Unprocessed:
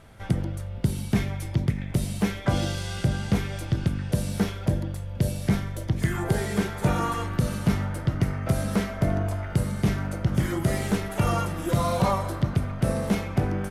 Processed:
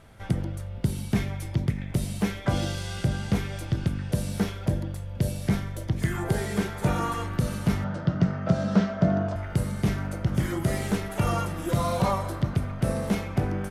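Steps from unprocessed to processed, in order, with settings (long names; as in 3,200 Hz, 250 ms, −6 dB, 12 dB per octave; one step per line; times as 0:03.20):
0:07.84–0:09.36: loudspeaker in its box 100–6,000 Hz, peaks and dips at 180 Hz +10 dB, 620 Hz +6 dB, 1,400 Hz +4 dB, 2,200 Hz −6 dB
level −1.5 dB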